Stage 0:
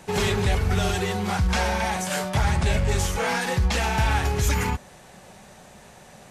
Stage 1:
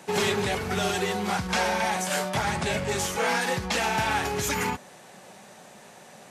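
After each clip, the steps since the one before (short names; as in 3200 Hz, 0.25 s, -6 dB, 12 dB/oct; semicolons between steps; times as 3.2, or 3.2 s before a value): HPF 190 Hz 12 dB/oct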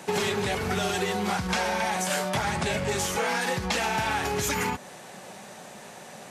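compressor 4:1, threshold -29 dBFS, peak gain reduction 7.5 dB; gain +4.5 dB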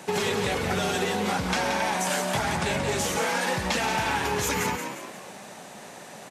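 frequency-shifting echo 0.176 s, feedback 44%, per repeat +68 Hz, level -7 dB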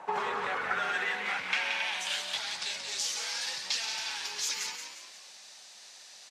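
band-pass sweep 970 Hz -> 4800 Hz, 0.03–2.73; gain +4 dB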